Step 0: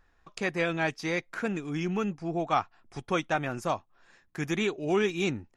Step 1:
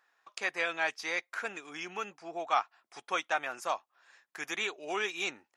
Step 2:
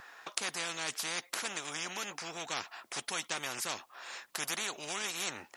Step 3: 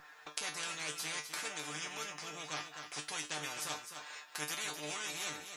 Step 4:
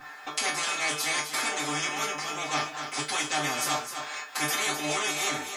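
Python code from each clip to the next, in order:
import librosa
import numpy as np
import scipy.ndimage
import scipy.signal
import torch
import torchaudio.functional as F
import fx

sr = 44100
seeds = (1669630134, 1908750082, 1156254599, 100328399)

y1 = scipy.signal.sosfilt(scipy.signal.butter(2, 750.0, 'highpass', fs=sr, output='sos'), x)
y2 = fx.spectral_comp(y1, sr, ratio=4.0)
y2 = y2 * 10.0 ** (6.5 / 20.0)
y3 = fx.comb_fb(y2, sr, f0_hz=150.0, decay_s=0.23, harmonics='all', damping=0.0, mix_pct=90)
y3 = y3 + 10.0 ** (-8.5 / 20.0) * np.pad(y3, (int(257 * sr / 1000.0), 0))[:len(y3)]
y3 = y3 * 10.0 ** (5.5 / 20.0)
y4 = fx.rev_fdn(y3, sr, rt60_s=0.31, lf_ratio=0.75, hf_ratio=0.6, size_ms=23.0, drr_db=-9.5)
y4 = y4 * 10.0 ** (3.5 / 20.0)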